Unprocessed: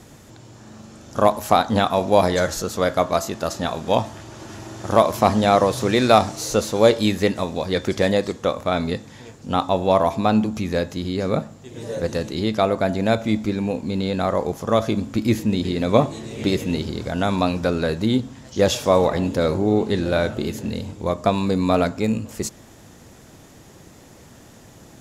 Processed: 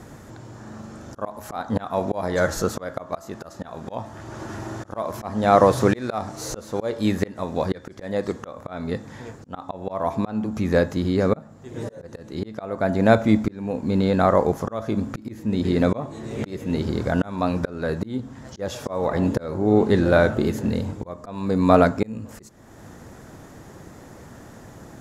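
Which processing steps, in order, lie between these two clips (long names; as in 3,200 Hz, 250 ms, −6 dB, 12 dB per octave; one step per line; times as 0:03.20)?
volume swells 470 ms
high shelf with overshoot 2,100 Hz −6 dB, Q 1.5
level +3.5 dB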